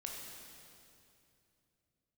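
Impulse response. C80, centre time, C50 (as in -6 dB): 2.0 dB, 0.113 s, 0.5 dB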